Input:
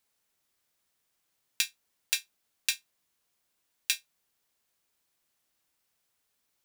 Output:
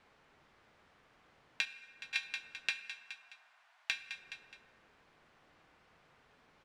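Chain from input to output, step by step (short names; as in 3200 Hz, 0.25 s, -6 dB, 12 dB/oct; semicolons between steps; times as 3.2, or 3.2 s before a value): feedback echo 0.21 s, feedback 36%, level -21 dB; in parallel at -8.5 dB: hard clip -19.5 dBFS, distortion -9 dB; 1.65–2.16 on the sum: auto swell 0.232 s; 2.7–3.91 steep high-pass 650 Hz 72 dB/oct; compressor 8:1, threshold -39 dBFS, peak gain reduction 18 dB; LPF 1900 Hz 12 dB/oct; on a send at -9.5 dB: reverb RT60 2.6 s, pre-delay 3 ms; on the sum: gain +17.5 dB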